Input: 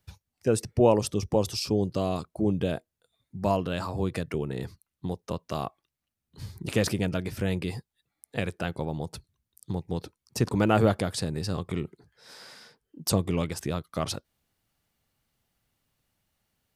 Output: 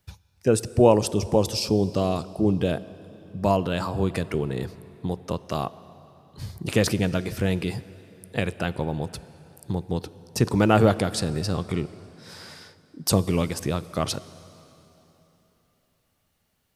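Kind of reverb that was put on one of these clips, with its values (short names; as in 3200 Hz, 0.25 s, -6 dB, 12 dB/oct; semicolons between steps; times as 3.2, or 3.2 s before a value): plate-style reverb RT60 3.5 s, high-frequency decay 0.85×, DRR 16 dB; gain +4 dB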